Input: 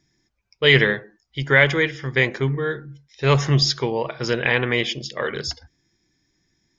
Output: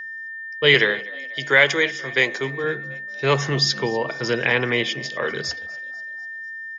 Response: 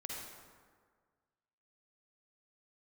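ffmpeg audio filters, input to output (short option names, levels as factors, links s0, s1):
-filter_complex "[0:a]highpass=120,asettb=1/sr,asplit=3[s0][s1][s2];[s0]atrim=end=0.744[s3];[s1]atrim=start=0.74:end=2.64,asetpts=PTS-STARTPTS,afade=t=in:d=0.004:c=qsin,afade=t=out:st=1.896:d=0.004:c=qsin,bass=f=250:g=-11,treble=f=4000:g=10[s4];[s2]atrim=start=2.636[s5];[s3][s4]acrossfade=d=0.004:c1=hsin:c2=qsin[s6];[s6][s5]acrossfade=d=0.004:c1=qsin:c2=hsin,asplit=5[s7][s8][s9][s10][s11];[s8]adelay=246,afreqshift=61,volume=0.0841[s12];[s9]adelay=492,afreqshift=122,volume=0.0452[s13];[s10]adelay=738,afreqshift=183,volume=0.0245[s14];[s11]adelay=984,afreqshift=244,volume=0.0132[s15];[s7][s12][s13][s14][s15]amix=inputs=5:normalize=0,acrossover=split=200|500|2500[s16][s17][s18][s19];[s16]asoftclip=type=hard:threshold=0.0422[s20];[s20][s17][s18][s19]amix=inputs=4:normalize=0,aeval=exprs='val(0)+0.0282*sin(2*PI*1800*n/s)':c=same"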